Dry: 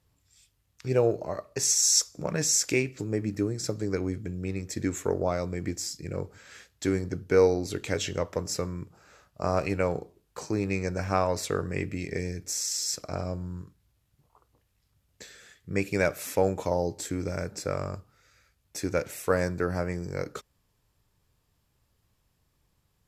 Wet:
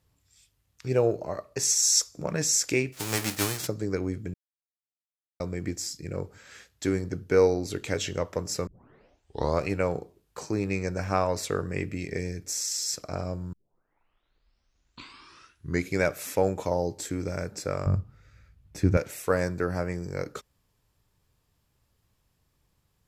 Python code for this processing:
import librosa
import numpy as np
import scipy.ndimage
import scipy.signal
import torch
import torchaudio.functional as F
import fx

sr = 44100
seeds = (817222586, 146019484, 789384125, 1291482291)

y = fx.envelope_flatten(x, sr, power=0.3, at=(2.92, 3.66), fade=0.02)
y = fx.bass_treble(y, sr, bass_db=15, treble_db=-8, at=(17.86, 18.97))
y = fx.edit(y, sr, fx.silence(start_s=4.34, length_s=1.06),
    fx.tape_start(start_s=8.67, length_s=0.98),
    fx.tape_start(start_s=13.53, length_s=2.52), tone=tone)